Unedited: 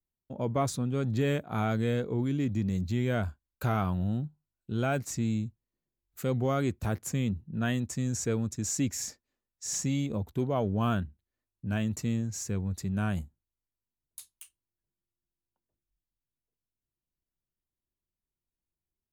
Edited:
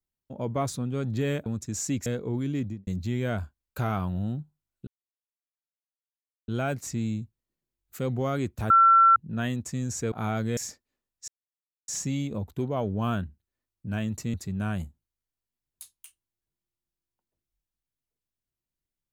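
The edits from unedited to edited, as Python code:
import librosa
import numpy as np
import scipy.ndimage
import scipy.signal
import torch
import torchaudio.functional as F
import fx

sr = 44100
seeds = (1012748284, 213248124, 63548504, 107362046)

y = fx.studio_fade_out(x, sr, start_s=2.45, length_s=0.27)
y = fx.edit(y, sr, fx.swap(start_s=1.46, length_s=0.45, other_s=8.36, other_length_s=0.6),
    fx.insert_silence(at_s=4.72, length_s=1.61),
    fx.bleep(start_s=6.94, length_s=0.46, hz=1350.0, db=-13.5),
    fx.insert_silence(at_s=9.67, length_s=0.6),
    fx.cut(start_s=12.13, length_s=0.58), tone=tone)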